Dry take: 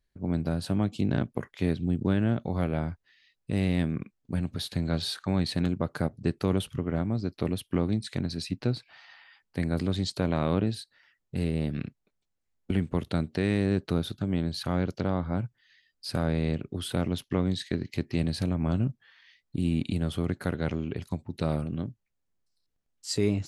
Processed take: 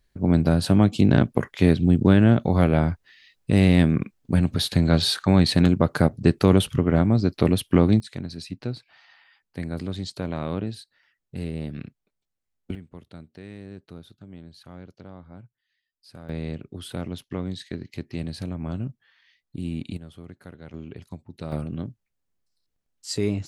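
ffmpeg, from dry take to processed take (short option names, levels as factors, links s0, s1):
-af "asetnsamples=n=441:p=0,asendcmd='8 volume volume -2.5dB;12.75 volume volume -15dB;16.29 volume volume -3.5dB;19.97 volume volume -13.5dB;20.74 volume volume -6dB;21.52 volume volume 1dB',volume=2.99"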